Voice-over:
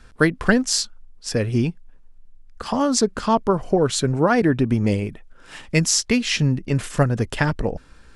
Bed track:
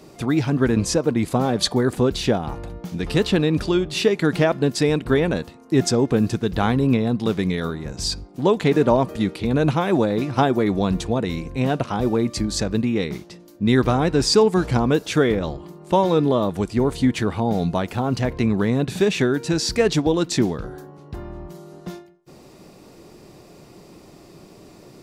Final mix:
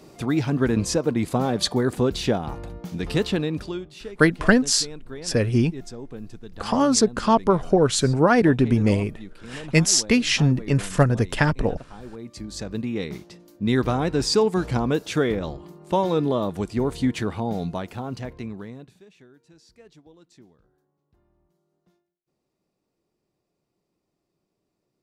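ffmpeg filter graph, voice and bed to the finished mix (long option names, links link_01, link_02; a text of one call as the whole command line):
ffmpeg -i stem1.wav -i stem2.wav -filter_complex "[0:a]adelay=4000,volume=0.5dB[link_01];[1:a]volume=12.5dB,afade=type=out:start_time=3.1:duration=0.86:silence=0.149624,afade=type=in:start_time=12.16:duration=1.04:silence=0.177828,afade=type=out:start_time=17.21:duration=1.78:silence=0.0375837[link_02];[link_01][link_02]amix=inputs=2:normalize=0" out.wav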